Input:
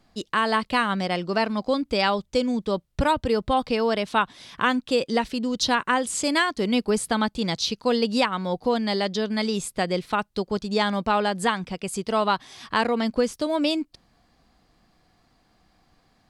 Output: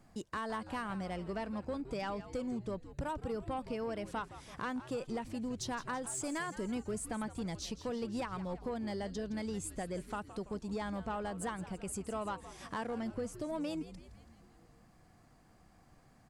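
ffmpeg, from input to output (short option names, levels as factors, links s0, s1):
-filter_complex "[0:a]equalizer=f=125:t=o:w=1:g=5,equalizer=f=4000:t=o:w=1:g=-11,equalizer=f=8000:t=o:w=1:g=5,acompressor=threshold=0.00708:ratio=2,asoftclip=type=tanh:threshold=0.0398,asplit=2[s0][s1];[s1]asplit=6[s2][s3][s4][s5][s6][s7];[s2]adelay=166,afreqshift=-130,volume=0.211[s8];[s3]adelay=332,afreqshift=-260,volume=0.124[s9];[s4]adelay=498,afreqshift=-390,volume=0.0733[s10];[s5]adelay=664,afreqshift=-520,volume=0.0437[s11];[s6]adelay=830,afreqshift=-650,volume=0.0257[s12];[s7]adelay=996,afreqshift=-780,volume=0.0151[s13];[s8][s9][s10][s11][s12][s13]amix=inputs=6:normalize=0[s14];[s0][s14]amix=inputs=2:normalize=0,volume=0.841"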